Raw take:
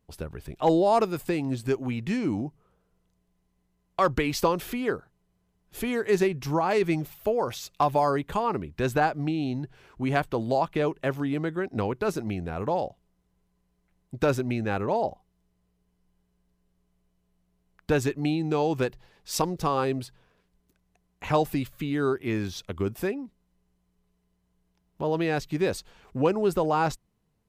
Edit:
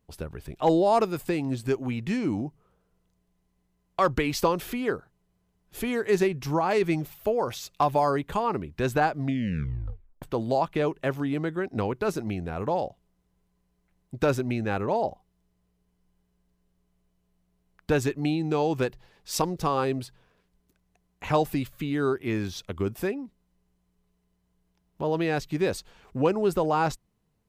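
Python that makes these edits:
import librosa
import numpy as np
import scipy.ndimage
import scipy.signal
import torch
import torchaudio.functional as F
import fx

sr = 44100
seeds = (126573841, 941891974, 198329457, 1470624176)

y = fx.edit(x, sr, fx.tape_stop(start_s=9.16, length_s=1.06), tone=tone)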